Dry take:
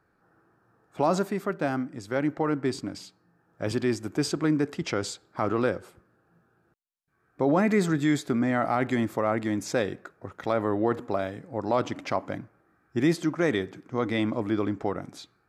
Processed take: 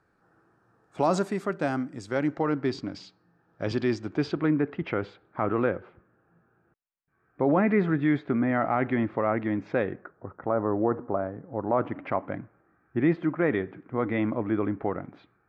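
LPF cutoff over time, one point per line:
LPF 24 dB/oct
1.94 s 10000 Hz
2.62 s 5300 Hz
3.97 s 5300 Hz
4.61 s 2600 Hz
9.78 s 2600 Hz
10.26 s 1400 Hz
11.46 s 1400 Hz
12.13 s 2400 Hz

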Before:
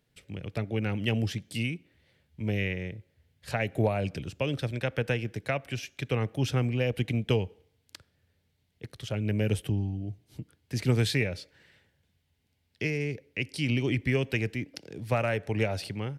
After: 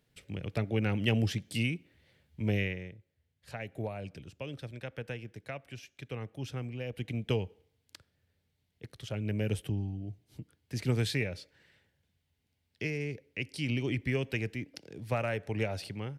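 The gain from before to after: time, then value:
2.55 s 0 dB
2.98 s -11 dB
6.83 s -11 dB
7.3 s -4.5 dB

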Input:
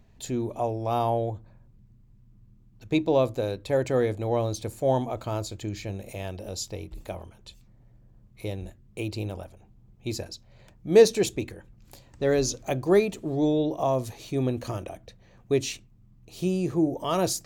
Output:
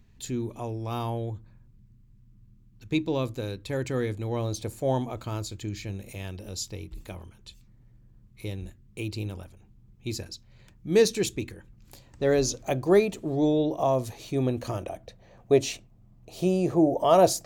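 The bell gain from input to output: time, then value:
bell 650 Hz 0.98 oct
4.3 s -12 dB
4.58 s -1 dB
5.45 s -10 dB
11.36 s -10 dB
12.32 s +1 dB
14.64 s +1 dB
15.59 s +11 dB

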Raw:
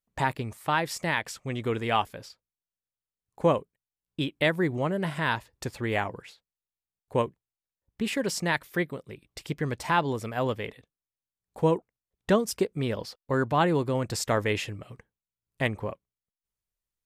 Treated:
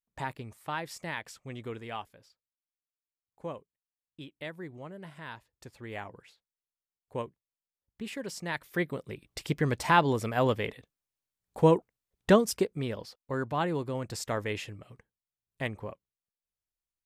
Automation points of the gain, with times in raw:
1.58 s -9 dB
2.18 s -16 dB
5.52 s -16 dB
6.23 s -9.5 dB
8.42 s -9.5 dB
9.01 s +2 dB
12.33 s +2 dB
13.02 s -6.5 dB

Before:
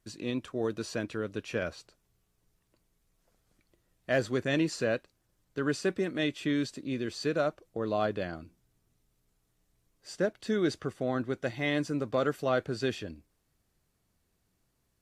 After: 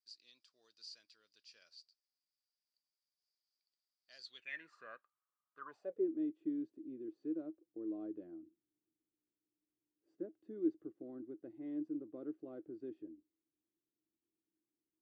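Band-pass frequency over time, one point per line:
band-pass, Q 14
4.22 s 4800 Hz
4.72 s 1200 Hz
5.63 s 1200 Hz
6.09 s 320 Hz

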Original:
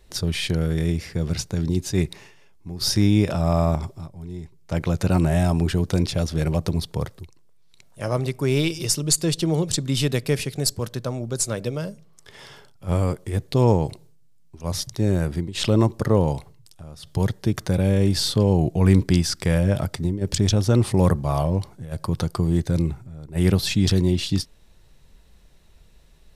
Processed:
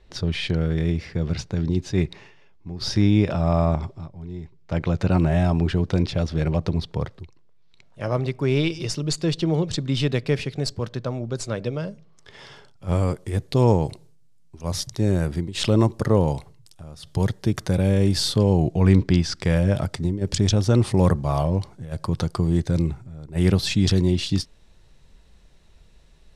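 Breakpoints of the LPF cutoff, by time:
11.86 s 4100 Hz
13.27 s 11000 Hz
18.39 s 11000 Hz
19.16 s 4100 Hz
19.63 s 8500 Hz

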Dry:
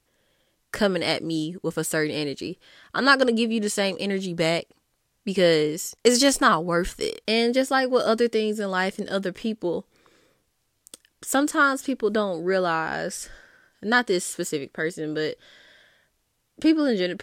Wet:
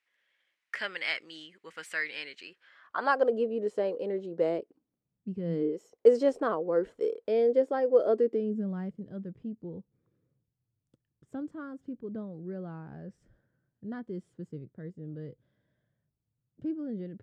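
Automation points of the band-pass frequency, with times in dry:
band-pass, Q 2.6
2.47 s 2100 Hz
3.41 s 480 Hz
4.44 s 480 Hz
5.42 s 110 Hz
5.74 s 470 Hz
8.09 s 470 Hz
8.95 s 130 Hz

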